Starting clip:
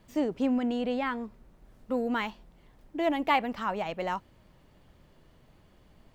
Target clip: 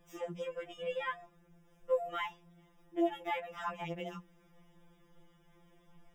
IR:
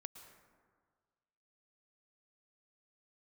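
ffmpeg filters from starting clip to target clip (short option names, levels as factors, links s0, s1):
-af "asuperstop=centerf=4300:order=20:qfactor=5,bandreject=f=60:t=h:w=6,bandreject=f=120:t=h:w=6,bandreject=f=180:t=h:w=6,bandreject=f=240:t=h:w=6,alimiter=limit=0.0841:level=0:latency=1:release=247,afftfilt=real='re*2.83*eq(mod(b,8),0)':imag='im*2.83*eq(mod(b,8),0)':win_size=2048:overlap=0.75,volume=0.841"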